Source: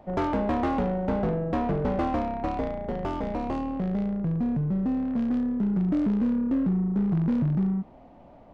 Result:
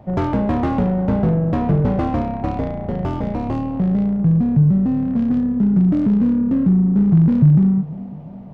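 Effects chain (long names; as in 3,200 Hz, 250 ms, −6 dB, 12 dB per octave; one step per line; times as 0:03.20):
parametric band 120 Hz +14 dB 1.4 octaves
tape delay 349 ms, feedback 64%, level −15.5 dB, low-pass 1,500 Hz
level +3 dB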